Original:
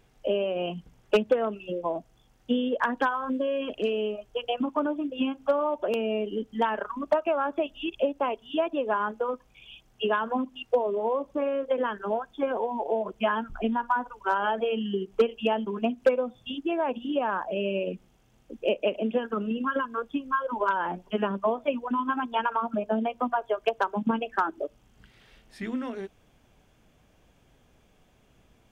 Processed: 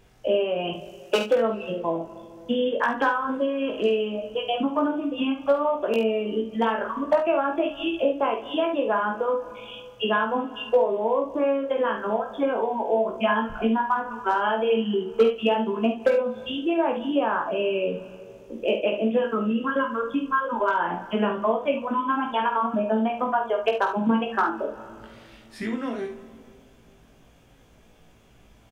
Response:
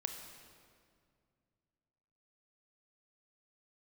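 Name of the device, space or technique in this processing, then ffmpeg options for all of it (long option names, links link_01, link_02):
ducked reverb: -filter_complex "[0:a]asettb=1/sr,asplit=3[link_01][link_02][link_03];[link_01]atrim=end=0.734[link_04];[link_02]atrim=start=0.73:end=1.36,asetpts=PTS-STARTPTS,afade=type=in:duration=0.004:curve=qsin,afade=type=out:start_time=0.626:duration=0.004:curve=qsin,bass=frequency=250:gain=-11,treble=frequency=4000:gain=8[link_05];[link_03]atrim=start=1.356[link_06];[link_04][link_05]acrossfade=duration=0.004:curve1=hsin:curve2=qsin[link_07];[link_07][link_06]acrossfade=duration=0.004:curve1=qsin:curve2=hsin,asplit=2[link_08][link_09];[link_09]adelay=18,volume=-4dB[link_10];[link_08][link_10]amix=inputs=2:normalize=0,asplit=3[link_11][link_12][link_13];[1:a]atrim=start_sample=2205[link_14];[link_12][link_14]afir=irnorm=-1:irlink=0[link_15];[link_13]apad=whole_len=1266991[link_16];[link_15][link_16]sidechaincompress=threshold=-35dB:ratio=8:attack=44:release=167,volume=-4dB[link_17];[link_11][link_17]amix=inputs=2:normalize=0,aecho=1:1:48|72:0.398|0.299"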